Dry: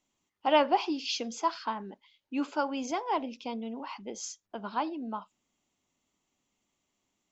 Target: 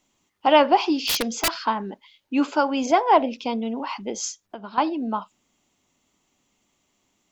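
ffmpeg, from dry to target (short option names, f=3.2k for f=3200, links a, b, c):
-filter_complex "[0:a]asplit=2[a][b];[b]alimiter=limit=-19.5dB:level=0:latency=1:release=208,volume=-2dB[c];[a][c]amix=inputs=2:normalize=0,asplit=3[d][e][f];[d]afade=t=out:st=1.07:d=0.02[g];[e]aeval=exprs='(mod(10*val(0)+1,2)-1)/10':c=same,afade=t=in:st=1.07:d=0.02,afade=t=out:st=1.5:d=0.02[h];[f]afade=t=in:st=1.5:d=0.02[i];[g][h][i]amix=inputs=3:normalize=0,asettb=1/sr,asplit=3[j][k][l];[j]atrim=end=2.864[m];[k]atrim=start=2.86:end=3.39,asetpts=PTS-STARTPTS,afade=t=in:d=0.004:c=qsin,afade=t=out:st=0.526:d=0.004:c=qsin,equalizer=f=630:t=o:w=0.67:g=7,equalizer=f=1.6k:t=o:w=0.67:g=4,equalizer=f=6.3k:t=o:w=0.67:g=-5[n];[l]atrim=start=3.386[o];[m][n]acrossfade=d=0.004:c1=hsin:c2=qsin[p];[p][o]acrossfade=d=0.004:c1=qsin:c2=hsin,asettb=1/sr,asplit=3[q][r][s];[q]atrim=end=4.294[t];[r]atrim=start=4.29:end=4.78,asetpts=PTS-STARTPTS,afade=t=in:d=0.004:c=qsin,afade=t=out:st=0.486:d=0.004:c=qsin,acompressor=threshold=-39dB:ratio=6[u];[s]atrim=start=4.776[v];[t][u]acrossfade=d=0.004:c1=hsin:c2=qsin[w];[w][v]acrossfade=d=0.004:c1=qsin:c2=hsin,volume=5dB"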